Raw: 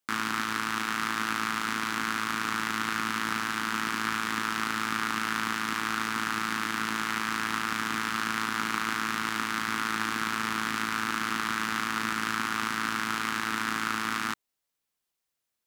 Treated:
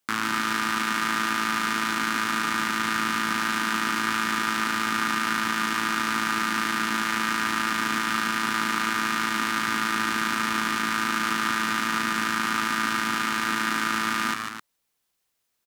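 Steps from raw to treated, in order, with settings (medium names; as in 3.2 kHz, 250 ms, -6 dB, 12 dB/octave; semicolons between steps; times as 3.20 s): peak limiter -16 dBFS, peak gain reduction 5.5 dB; on a send: loudspeakers at several distances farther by 51 m -6 dB, 89 m -10 dB; on the sum: trim +6 dB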